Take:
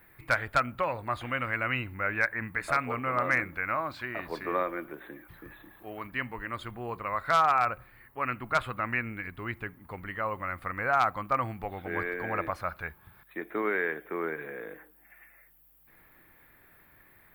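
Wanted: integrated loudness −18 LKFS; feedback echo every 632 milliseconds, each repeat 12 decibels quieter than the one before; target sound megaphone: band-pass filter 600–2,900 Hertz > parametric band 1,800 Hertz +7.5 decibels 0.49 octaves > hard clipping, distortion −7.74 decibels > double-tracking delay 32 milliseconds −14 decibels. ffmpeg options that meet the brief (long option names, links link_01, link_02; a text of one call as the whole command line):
ffmpeg -i in.wav -filter_complex "[0:a]highpass=600,lowpass=2900,equalizer=frequency=1800:width_type=o:width=0.49:gain=7.5,aecho=1:1:632|1264|1896:0.251|0.0628|0.0157,asoftclip=type=hard:threshold=-24dB,asplit=2[link_01][link_02];[link_02]adelay=32,volume=-14dB[link_03];[link_01][link_03]amix=inputs=2:normalize=0,volume=13.5dB" out.wav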